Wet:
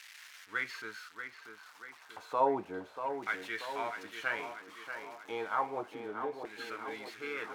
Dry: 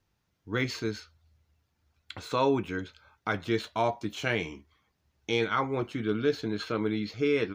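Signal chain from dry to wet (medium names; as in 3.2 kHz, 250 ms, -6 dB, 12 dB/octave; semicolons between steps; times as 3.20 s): zero-crossing glitches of -27 dBFS; 2.40–3.28 s: tilt shelf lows +4.5 dB, about 1.3 kHz; 5.85–6.88 s: compression, threshold -29 dBFS, peak gain reduction 8.5 dB; LFO band-pass saw down 0.31 Hz 600–2000 Hz; tape echo 636 ms, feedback 62%, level -6.5 dB, low-pass 2.6 kHz; trim +1.5 dB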